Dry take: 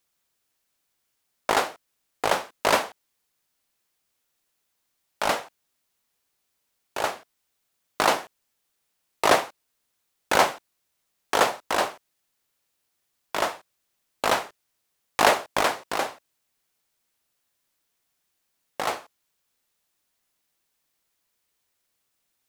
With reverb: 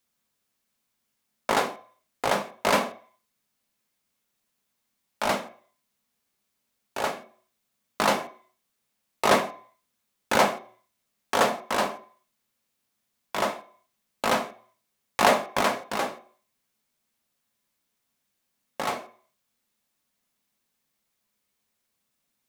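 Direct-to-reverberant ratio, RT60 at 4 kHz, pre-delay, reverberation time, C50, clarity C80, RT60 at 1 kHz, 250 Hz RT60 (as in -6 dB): 5.0 dB, 0.45 s, 3 ms, 0.50 s, 13.5 dB, 18.5 dB, 0.55 s, 0.40 s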